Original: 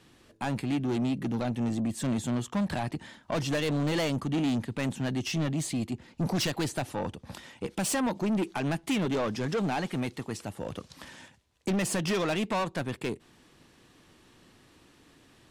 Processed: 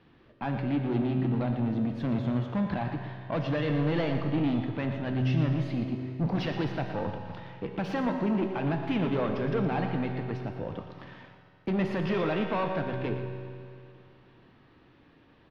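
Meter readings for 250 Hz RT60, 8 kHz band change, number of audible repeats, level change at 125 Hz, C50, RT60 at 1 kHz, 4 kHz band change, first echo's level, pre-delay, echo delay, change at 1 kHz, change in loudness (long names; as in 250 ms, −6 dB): 2.4 s, below −25 dB, 1, +3.0 dB, 4.0 dB, 2.4 s, −6.5 dB, −10.5 dB, 3 ms, 117 ms, +0.5 dB, +0.5 dB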